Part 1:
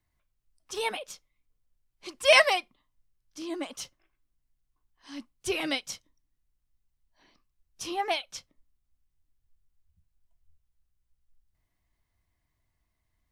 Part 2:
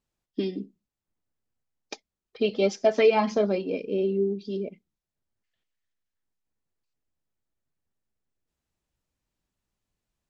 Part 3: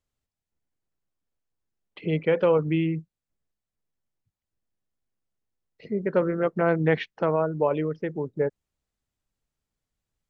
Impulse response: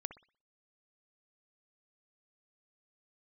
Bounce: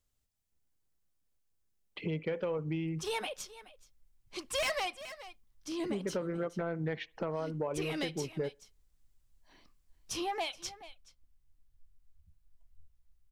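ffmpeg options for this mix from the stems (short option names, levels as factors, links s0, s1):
-filter_complex "[0:a]asoftclip=type=tanh:threshold=0.0794,adelay=2300,volume=0.944,asplit=3[s0][s1][s2];[s1]volume=0.133[s3];[s2]volume=0.1[s4];[2:a]highshelf=f=4200:g=9,volume=0.75,asplit=2[s5][s6];[s6]volume=0.075[s7];[s0][s5]amix=inputs=2:normalize=0,lowshelf=f=88:g=8.5,acompressor=threshold=0.0251:ratio=8,volume=1[s8];[3:a]atrim=start_sample=2205[s9];[s3][s7]amix=inputs=2:normalize=0[s10];[s10][s9]afir=irnorm=-1:irlink=0[s11];[s4]aecho=0:1:425:1[s12];[s8][s11][s12]amix=inputs=3:normalize=0,asoftclip=type=tanh:threshold=0.075"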